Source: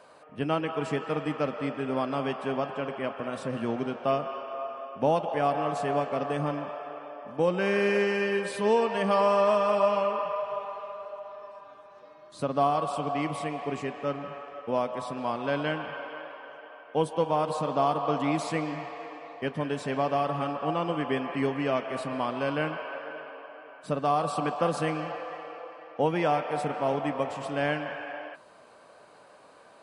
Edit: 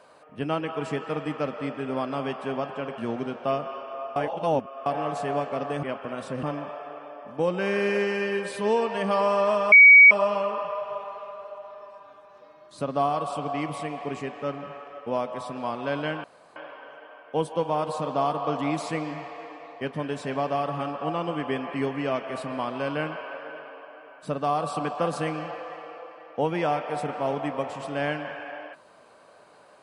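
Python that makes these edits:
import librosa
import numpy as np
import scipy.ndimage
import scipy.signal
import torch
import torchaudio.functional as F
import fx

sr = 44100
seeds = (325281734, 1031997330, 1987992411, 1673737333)

y = fx.edit(x, sr, fx.move(start_s=2.98, length_s=0.6, to_s=6.43),
    fx.reverse_span(start_s=4.76, length_s=0.7),
    fx.insert_tone(at_s=9.72, length_s=0.39, hz=2260.0, db=-7.5),
    fx.room_tone_fill(start_s=15.85, length_s=0.32), tone=tone)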